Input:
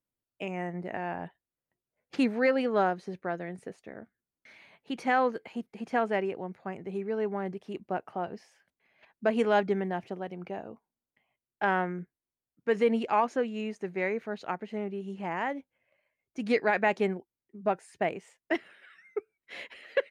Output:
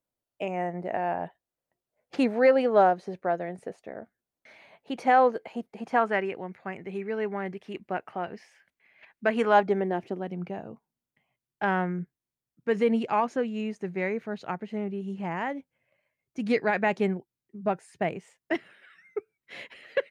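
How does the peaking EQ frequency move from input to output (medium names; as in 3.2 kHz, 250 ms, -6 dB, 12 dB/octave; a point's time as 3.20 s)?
peaking EQ +8.5 dB 1.1 oct
5.75 s 650 Hz
6.31 s 2.1 kHz
9.25 s 2.1 kHz
9.85 s 480 Hz
10.55 s 140 Hz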